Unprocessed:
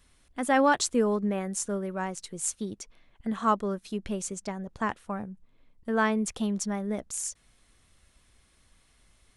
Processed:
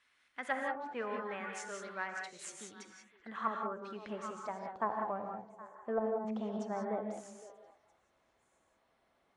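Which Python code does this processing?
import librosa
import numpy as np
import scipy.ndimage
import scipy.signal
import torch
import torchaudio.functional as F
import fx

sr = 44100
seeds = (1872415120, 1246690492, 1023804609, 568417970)

y = fx.cheby_harmonics(x, sr, harmonics=(3, 6), levels_db=(-25, -31), full_scale_db=-9.5)
y = fx.filter_sweep_bandpass(y, sr, from_hz=1900.0, to_hz=690.0, start_s=2.81, end_s=5.16, q=1.3)
y = fx.echo_stepped(y, sr, ms=256, hz=180.0, octaves=1.4, feedback_pct=70, wet_db=-11.5)
y = fx.env_lowpass_down(y, sr, base_hz=400.0, full_db=-27.0)
y = fx.rev_gated(y, sr, seeds[0], gate_ms=210, shape='rising', drr_db=2.0)
y = F.gain(torch.from_numpy(y), 1.0).numpy()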